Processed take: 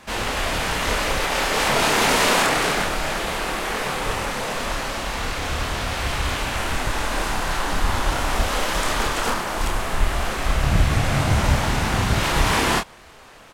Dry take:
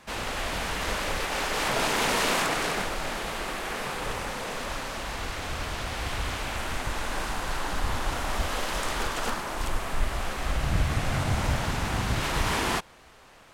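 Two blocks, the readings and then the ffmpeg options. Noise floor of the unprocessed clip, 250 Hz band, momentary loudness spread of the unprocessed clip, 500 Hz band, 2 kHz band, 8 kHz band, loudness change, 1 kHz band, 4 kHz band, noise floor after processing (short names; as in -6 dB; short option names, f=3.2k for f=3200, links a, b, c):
-53 dBFS, +7.5 dB, 8 LU, +7.0 dB, +7.0 dB, +7.0 dB, +7.0 dB, +7.0 dB, +7.0 dB, -45 dBFS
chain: -filter_complex "[0:a]asplit=2[a][b];[b]adelay=28,volume=-5dB[c];[a][c]amix=inputs=2:normalize=0,volume=6dB"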